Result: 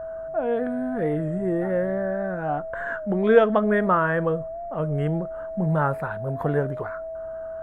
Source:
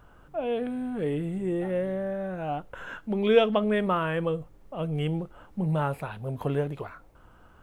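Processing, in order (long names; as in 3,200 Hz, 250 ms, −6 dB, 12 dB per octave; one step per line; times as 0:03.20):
pitch vibrato 3.7 Hz 26 cents
steady tone 650 Hz −35 dBFS
high shelf with overshoot 2,100 Hz −7.5 dB, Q 3
wow of a warped record 33 1/3 rpm, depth 100 cents
level +3.5 dB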